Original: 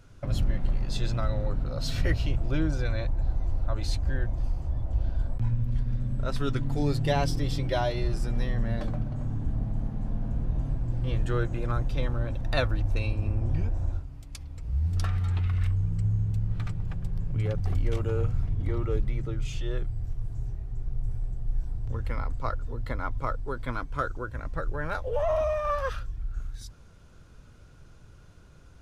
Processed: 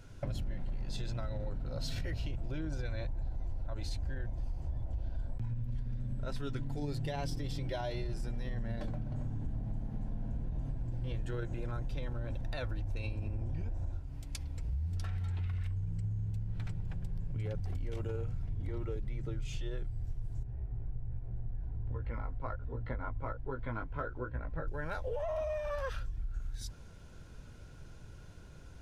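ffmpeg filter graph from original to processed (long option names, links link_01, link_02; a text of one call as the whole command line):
ffmpeg -i in.wav -filter_complex "[0:a]asettb=1/sr,asplit=3[link_01][link_02][link_03];[link_01]atrim=end=20.434[link_04];[link_02]atrim=start=20.43:end=24.68,asetpts=PTS-STARTPTS,afade=type=in:duration=0.004:curve=qsin,afade=type=out:start_time=4.246:duration=0.004:curve=qsin,lowpass=2100,flanger=delay=15.5:depth=3.9:speed=1.3[link_05];[link_03]atrim=start=24.676[link_06];[link_04][link_05]acrossfade=duration=0.004:curve1=hsin:curve2=qsin[link_07];[link_07][link_06]acrossfade=duration=0.004:curve1=qsin:curve2=hsin,alimiter=limit=-20.5dB:level=0:latency=1:release=22,bandreject=frequency=1200:width=6.6,acompressor=threshold=-34dB:ratio=6,volume=1dB" out.wav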